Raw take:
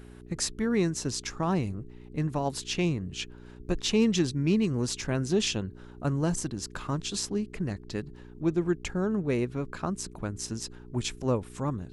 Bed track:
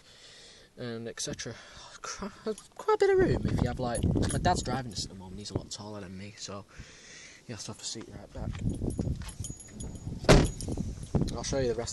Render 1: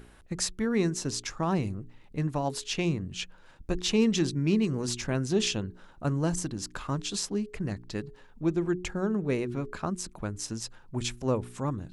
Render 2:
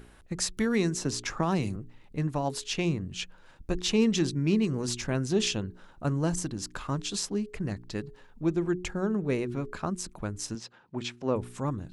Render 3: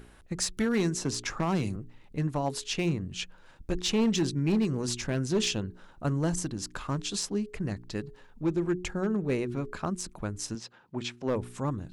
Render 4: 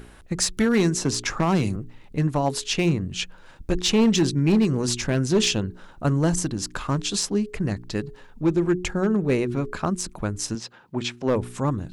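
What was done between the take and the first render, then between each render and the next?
de-hum 60 Hz, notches 7
0.57–1.76 s: three bands compressed up and down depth 70%; 10.55–11.36 s: band-pass 170–4200 Hz
hard clipper -20.5 dBFS, distortion -18 dB
trim +7 dB

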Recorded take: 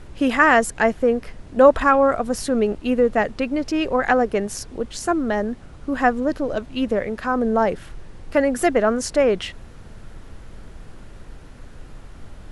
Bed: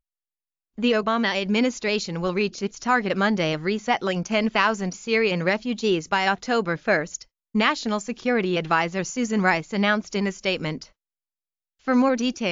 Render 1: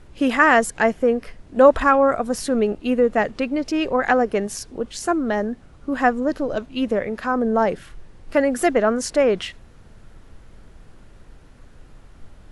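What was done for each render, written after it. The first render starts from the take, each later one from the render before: noise print and reduce 6 dB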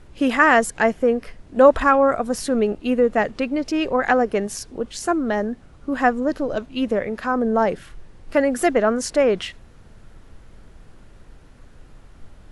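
no audible change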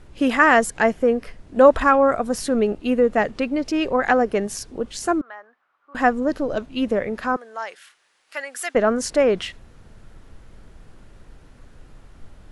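5.21–5.95 s: ladder band-pass 1.4 kHz, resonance 40%; 7.36–8.75 s: Bessel high-pass 1.8 kHz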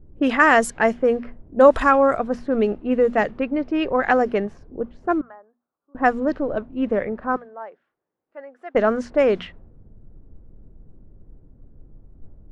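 hum notches 60/120/180/240 Hz; level-controlled noise filter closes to 310 Hz, open at -12.5 dBFS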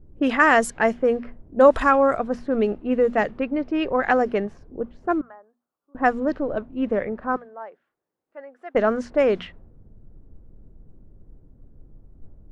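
trim -1.5 dB

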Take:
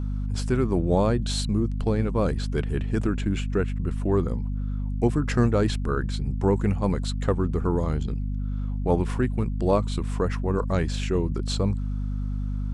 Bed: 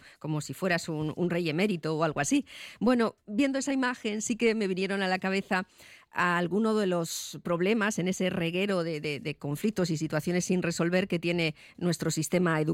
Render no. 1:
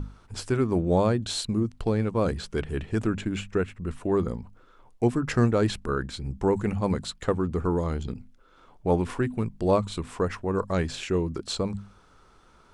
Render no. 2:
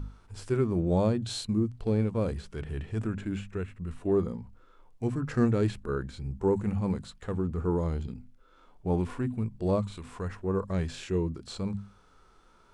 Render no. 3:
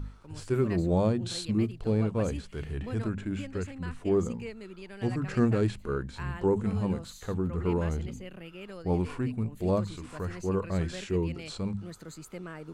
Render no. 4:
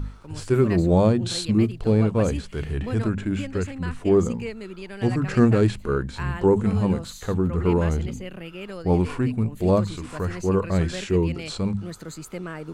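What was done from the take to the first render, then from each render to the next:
hum notches 50/100/150/200/250 Hz
hum notches 60/120 Hz; harmonic-percussive split percussive -13 dB
add bed -15.5 dB
trim +7.5 dB

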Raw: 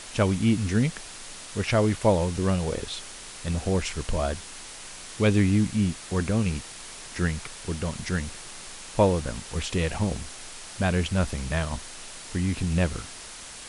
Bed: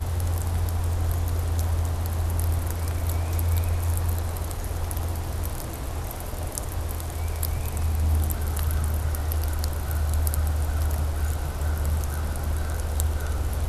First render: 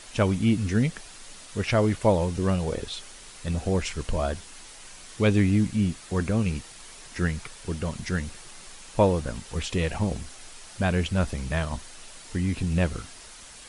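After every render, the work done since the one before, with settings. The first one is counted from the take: noise reduction 6 dB, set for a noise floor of -42 dBFS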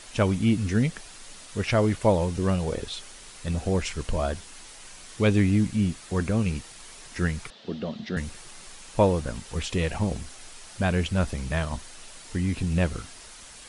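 7.50–8.17 s: cabinet simulation 210–4200 Hz, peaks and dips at 220 Hz +9 dB, 660 Hz +4 dB, 990 Hz -7 dB, 1.5 kHz -6 dB, 2.3 kHz -8 dB, 3.7 kHz +5 dB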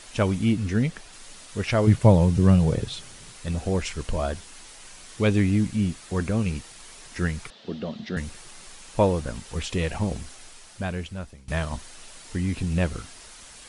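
0.52–1.13 s: treble shelf 5.7 kHz -5.5 dB; 1.87–3.33 s: peaking EQ 130 Hz +14 dB 1.3 oct; 10.29–11.48 s: fade out, to -22.5 dB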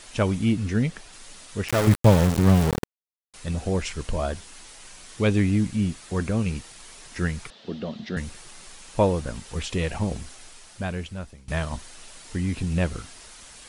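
1.68–3.34 s: small samples zeroed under -21 dBFS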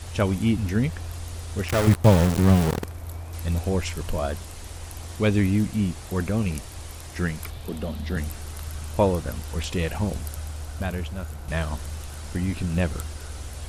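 add bed -9.5 dB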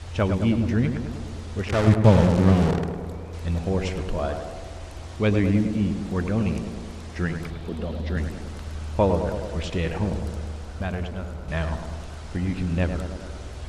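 distance through air 85 m; tape echo 103 ms, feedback 79%, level -5 dB, low-pass 1.3 kHz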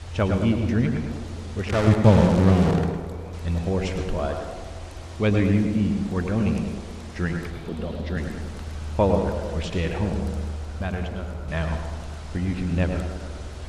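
plate-style reverb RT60 0.57 s, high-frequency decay 0.9×, pre-delay 95 ms, DRR 8 dB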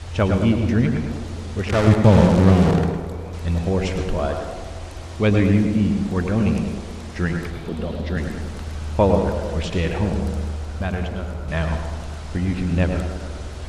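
trim +3.5 dB; peak limiter -2 dBFS, peak gain reduction 2.5 dB

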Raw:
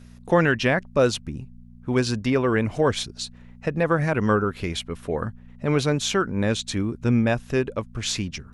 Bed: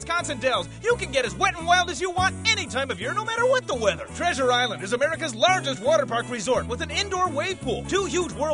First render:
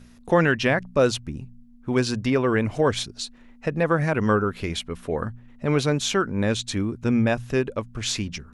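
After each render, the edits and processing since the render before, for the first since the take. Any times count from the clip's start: de-hum 60 Hz, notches 3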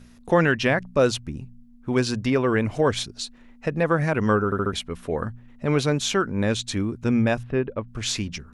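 4.45 s: stutter in place 0.07 s, 4 plays; 7.43–7.88 s: distance through air 420 m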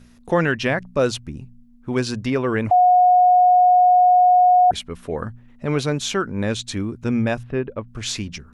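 2.71–4.71 s: bleep 725 Hz -10 dBFS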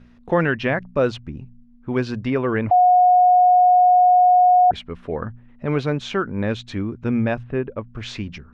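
low-pass 2.8 kHz 12 dB/octave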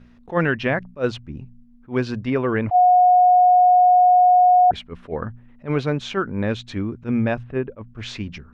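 attacks held to a fixed rise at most 300 dB/s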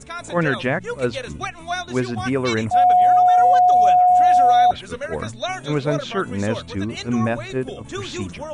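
add bed -7 dB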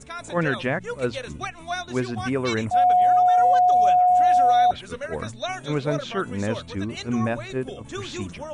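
trim -3.5 dB

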